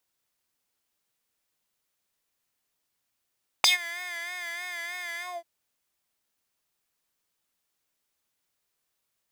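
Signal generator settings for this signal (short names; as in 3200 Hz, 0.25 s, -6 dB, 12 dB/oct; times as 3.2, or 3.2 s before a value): synth patch with vibrato F5, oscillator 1 square, interval 0 st, oscillator 2 level -13 dB, sub -3 dB, filter highpass, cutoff 480 Hz, Q 4.8, filter envelope 3.5 oct, filter decay 0.12 s, filter sustain 50%, attack 1.6 ms, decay 0.13 s, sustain -20.5 dB, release 0.21 s, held 1.58 s, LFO 3.2 Hz, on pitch 59 cents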